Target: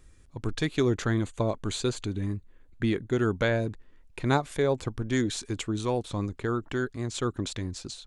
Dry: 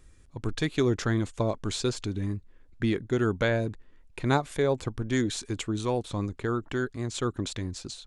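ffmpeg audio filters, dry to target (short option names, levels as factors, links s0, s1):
-filter_complex "[0:a]asettb=1/sr,asplit=3[s0][s1][s2];[s0]atrim=end=0.924[s3];[s1]atrim=start=0.92:end=3.16,asetpts=PTS-STARTPTS,afade=t=in:d=0.004:c=qsin,afade=t=out:st=2.236:d=0.004:c=qsin,bandreject=f=5300:w=5.5[s4];[s2]atrim=start=3.156[s5];[s3][s4]acrossfade=d=0.004:c1=hsin:c2=qsin[s6];[s6][s5]acrossfade=d=0.004:c1=qsin:c2=hsin"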